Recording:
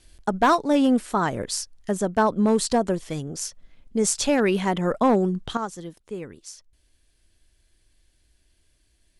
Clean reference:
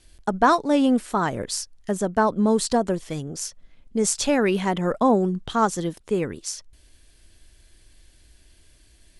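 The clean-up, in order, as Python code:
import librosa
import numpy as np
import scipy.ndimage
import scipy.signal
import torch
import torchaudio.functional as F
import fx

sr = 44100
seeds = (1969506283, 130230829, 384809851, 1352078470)

y = fx.fix_declip(x, sr, threshold_db=-12.0)
y = fx.fix_level(y, sr, at_s=5.57, step_db=10.0)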